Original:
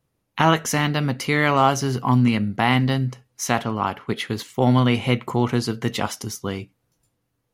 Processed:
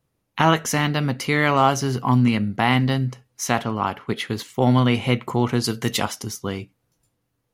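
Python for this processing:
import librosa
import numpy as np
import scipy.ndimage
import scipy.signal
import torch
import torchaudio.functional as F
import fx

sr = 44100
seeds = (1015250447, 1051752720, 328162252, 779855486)

y = fx.high_shelf(x, sr, hz=4400.0, db=11.5, at=(5.64, 6.05))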